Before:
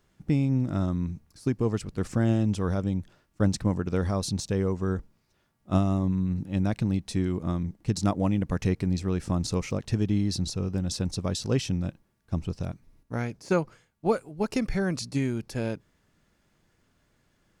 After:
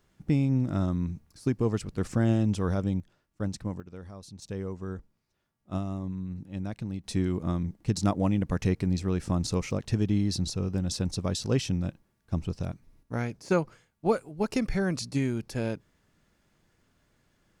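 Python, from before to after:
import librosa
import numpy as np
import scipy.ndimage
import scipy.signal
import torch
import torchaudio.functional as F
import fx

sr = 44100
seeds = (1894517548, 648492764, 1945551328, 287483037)

y = fx.gain(x, sr, db=fx.steps((0.0, -0.5), (3.0, -8.0), (3.8, -17.0), (4.42, -8.5), (7.04, -0.5)))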